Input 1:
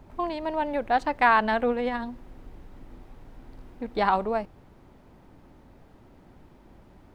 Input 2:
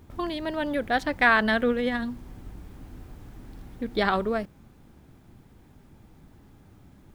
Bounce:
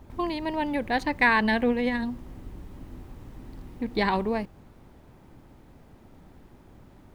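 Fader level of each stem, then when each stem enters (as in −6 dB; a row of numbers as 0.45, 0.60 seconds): −1.0, −3.0 decibels; 0.00, 0.00 seconds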